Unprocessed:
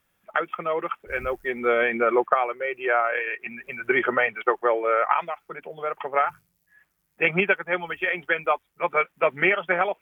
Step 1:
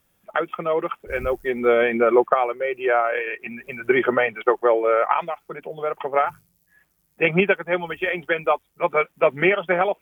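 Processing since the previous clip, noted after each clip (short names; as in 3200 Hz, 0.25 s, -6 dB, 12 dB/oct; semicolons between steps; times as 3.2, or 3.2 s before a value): bell 1700 Hz -7.5 dB 2 oct; gain +6.5 dB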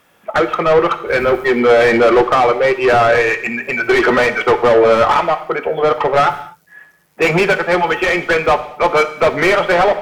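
overdrive pedal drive 28 dB, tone 1600 Hz, clips at -3.5 dBFS; non-linear reverb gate 0.27 s falling, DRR 9.5 dB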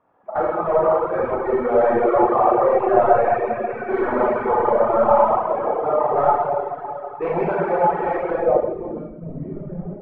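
Schroeder reverb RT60 3.2 s, combs from 28 ms, DRR -7.5 dB; reverb removal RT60 1.1 s; low-pass sweep 900 Hz -> 190 Hz, 8.28–9.2; gain -12.5 dB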